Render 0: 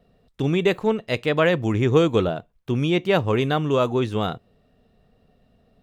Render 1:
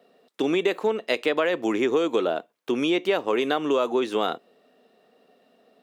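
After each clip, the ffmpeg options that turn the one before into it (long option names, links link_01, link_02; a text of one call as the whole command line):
ffmpeg -i in.wav -filter_complex "[0:a]asplit=2[link_01][link_02];[link_02]alimiter=limit=-14.5dB:level=0:latency=1,volume=-2dB[link_03];[link_01][link_03]amix=inputs=2:normalize=0,highpass=frequency=280:width=0.5412,highpass=frequency=280:width=1.3066,acompressor=threshold=-19dB:ratio=6" out.wav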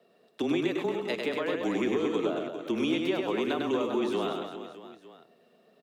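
ffmpeg -i in.wav -filter_complex "[0:a]afreqshift=-22,acrossover=split=320[link_01][link_02];[link_02]acompressor=threshold=-26dB:ratio=6[link_03];[link_01][link_03]amix=inputs=2:normalize=0,aecho=1:1:100|230|399|618.7|904.3:0.631|0.398|0.251|0.158|0.1,volume=-4.5dB" out.wav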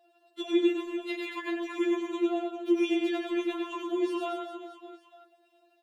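ffmpeg -i in.wav -af "afftfilt=real='re*4*eq(mod(b,16),0)':imag='im*4*eq(mod(b,16),0)':win_size=2048:overlap=0.75" out.wav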